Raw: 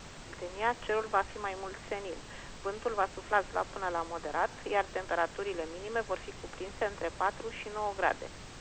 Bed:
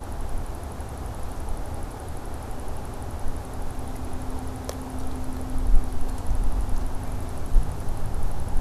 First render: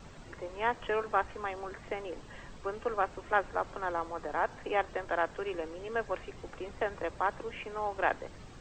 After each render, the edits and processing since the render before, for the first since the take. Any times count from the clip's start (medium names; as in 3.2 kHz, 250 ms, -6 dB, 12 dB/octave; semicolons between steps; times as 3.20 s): noise reduction 9 dB, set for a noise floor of -48 dBFS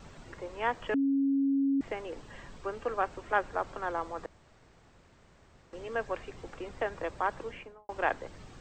0.94–1.81 s: bleep 275 Hz -24 dBFS; 4.26–5.73 s: room tone; 7.46–7.89 s: studio fade out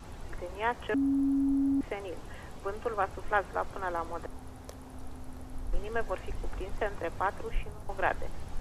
add bed -13.5 dB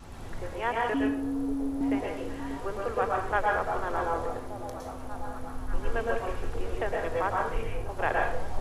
on a send: repeats whose band climbs or falls 588 ms, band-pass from 370 Hz, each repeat 0.7 oct, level -8.5 dB; on the sum: plate-style reverb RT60 0.58 s, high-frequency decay 0.85×, pre-delay 100 ms, DRR -1.5 dB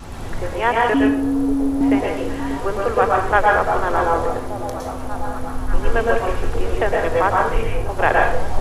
trim +11.5 dB